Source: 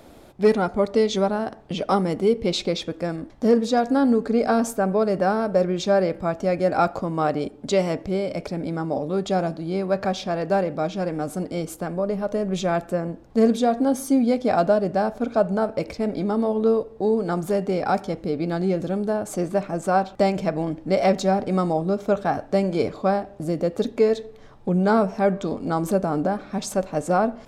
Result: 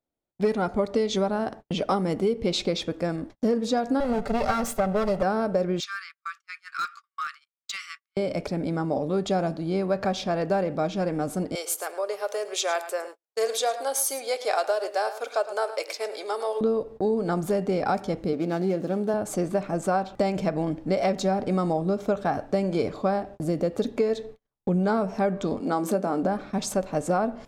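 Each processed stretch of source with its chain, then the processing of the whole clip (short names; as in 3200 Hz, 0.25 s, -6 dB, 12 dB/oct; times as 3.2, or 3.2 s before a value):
4–5.23 minimum comb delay 5.1 ms + comb 1.5 ms, depth 47%
5.8–8.17 brick-wall FIR high-pass 1100 Hz + high shelf 9800 Hz -10 dB + hard clip -24.5 dBFS
11.55–16.61 Chebyshev high-pass 400 Hz, order 4 + tilt +3.5 dB/oct + echo 0.108 s -14 dB
18.33–19.14 median filter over 15 samples + HPF 180 Hz
25.6–26.23 HPF 190 Hz 24 dB/oct + doubler 22 ms -13 dB
whole clip: gate -39 dBFS, range -42 dB; compressor, threshold -20 dBFS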